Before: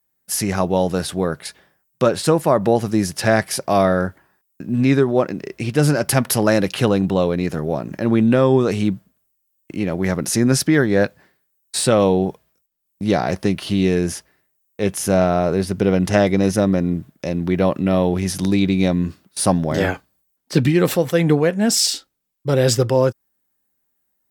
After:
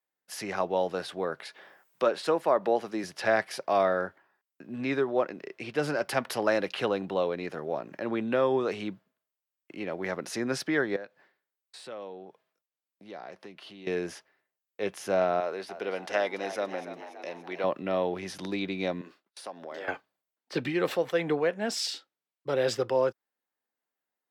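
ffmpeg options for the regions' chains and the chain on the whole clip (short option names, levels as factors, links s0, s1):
-filter_complex "[0:a]asettb=1/sr,asplit=3[s0][s1][s2];[s0]atrim=end=1.404[s3];[s1]atrim=start=1.4:end=3.04,asetpts=PTS-STARTPTS,afade=t=in:d=0.004:c=qsin,afade=t=out:st=1.636:d=0.004:c=qsin,highpass=170,acompressor=mode=upward:threshold=0.0355:ratio=2.5:attack=3.2:release=140:knee=2.83:detection=peak[s4];[s2]atrim=start=3.036[s5];[s3][s4]acrossfade=d=0.004:c1=hsin:c2=qsin[s6];[s6][s5]acrossfade=d=0.004:c1=qsin:c2=hsin,asettb=1/sr,asplit=3[s7][s8][s9];[s7]atrim=end=10.964[s10];[s8]atrim=start=10.96:end=13.87,asetpts=PTS-STARTPTS,afade=t=in:d=0.004:c=qsin,afade=t=out:st=2.906:d=0.004:c=qsin,highpass=110,acompressor=threshold=0.01:ratio=2:attack=3.2:release=140:knee=1:detection=peak[s11];[s9]atrim=start=13.866[s12];[s10][s11]acrossfade=d=0.004:c1=hsin:c2=qsin[s13];[s13][s12]acrossfade=d=0.004:c1=qsin:c2=hsin,asettb=1/sr,asplit=3[s14][s15][s16];[s14]atrim=end=15.404[s17];[s15]atrim=start=15.4:end=17.64,asetpts=PTS-STARTPTS,afade=t=in:d=0.004:c=qsin,afade=t=out:st=2.236:d=0.004:c=qsin,highpass=f=640:p=1,asplit=7[s18][s19][s20][s21][s22][s23][s24];[s19]adelay=287,afreqshift=73,volume=0.251[s25];[s20]adelay=574,afreqshift=146,volume=0.141[s26];[s21]adelay=861,afreqshift=219,volume=0.0785[s27];[s22]adelay=1148,afreqshift=292,volume=0.0442[s28];[s23]adelay=1435,afreqshift=365,volume=0.0248[s29];[s24]adelay=1722,afreqshift=438,volume=0.0138[s30];[s18][s25][s26][s27][s28][s29][s30]amix=inputs=7:normalize=0,atrim=end_sample=98784[s31];[s16]atrim=start=17.636[s32];[s17][s31]acrossfade=d=0.004:c1=hsin:c2=qsin[s33];[s33][s32]acrossfade=d=0.004:c1=qsin:c2=hsin,asettb=1/sr,asplit=3[s34][s35][s36];[s34]atrim=end=19.014[s37];[s35]atrim=start=19.01:end=19.88,asetpts=PTS-STARTPTS,afade=t=in:d=0.004:c=qsin,afade=t=out:st=0.866:d=0.004:c=qsin,agate=range=0.0224:threshold=0.00355:ratio=3:release=100:detection=peak,highpass=320,acompressor=threshold=0.0501:ratio=6:attack=3.2:release=140:knee=1:detection=peak[s38];[s36]atrim=start=19.876[s39];[s37][s38]acrossfade=d=0.004:c1=hsin:c2=qsin[s40];[s40][s39]acrossfade=d=0.004:c1=qsin:c2=hsin,highpass=120,acrossover=split=360 4500:gain=0.2 1 0.178[s41][s42][s43];[s41][s42][s43]amix=inputs=3:normalize=0,volume=0.447"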